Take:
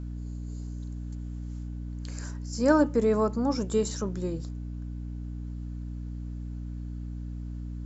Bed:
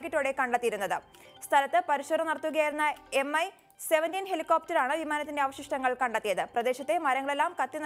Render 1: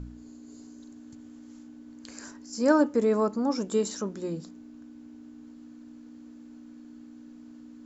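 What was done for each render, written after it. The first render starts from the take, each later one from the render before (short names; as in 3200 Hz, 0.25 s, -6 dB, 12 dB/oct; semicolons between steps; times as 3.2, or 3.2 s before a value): de-hum 60 Hz, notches 3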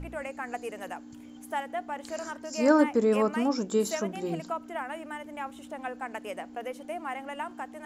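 add bed -8.5 dB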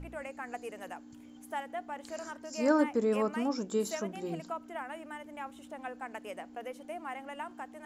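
gain -5 dB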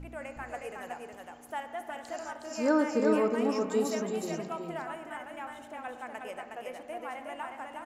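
echo 0.365 s -4 dB; spring tank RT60 1.9 s, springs 32/58 ms, chirp 65 ms, DRR 8.5 dB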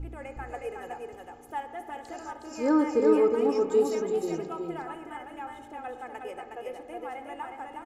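tilt shelf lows +5 dB, about 720 Hz; comb 2.4 ms, depth 68%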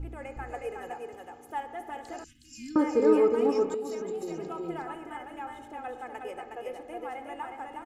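0.9–1.55 HPF 110 Hz 6 dB/oct; 2.24–2.76 elliptic band-stop 200–2700 Hz, stop band 60 dB; 3.74–4.68 compressor, threshold -31 dBFS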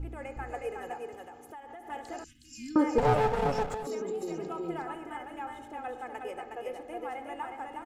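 1.27–1.9 compressor 10:1, threshold -42 dBFS; 2.98–3.87 minimum comb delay 1.5 ms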